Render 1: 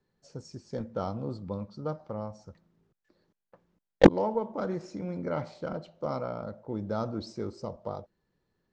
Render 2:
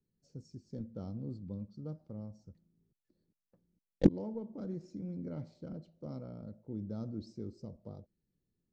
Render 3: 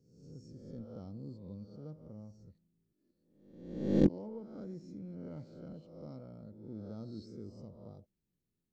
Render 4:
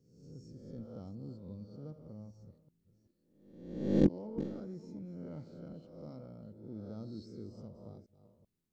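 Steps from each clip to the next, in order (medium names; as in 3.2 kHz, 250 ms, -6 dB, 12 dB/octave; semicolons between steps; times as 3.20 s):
FFT filter 260 Hz 0 dB, 1 kHz -20 dB, 3.2 kHz -14 dB, 4.6 kHz -9 dB; trim -4.5 dB
reverse spectral sustain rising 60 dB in 0.88 s; trim -5.5 dB
chunks repeated in reverse 384 ms, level -13 dB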